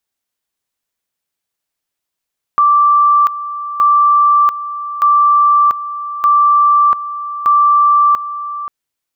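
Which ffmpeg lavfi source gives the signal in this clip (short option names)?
-f lavfi -i "aevalsrc='pow(10,(-6.5-13.5*gte(mod(t,1.22),0.69))/20)*sin(2*PI*1170*t)':d=6.1:s=44100"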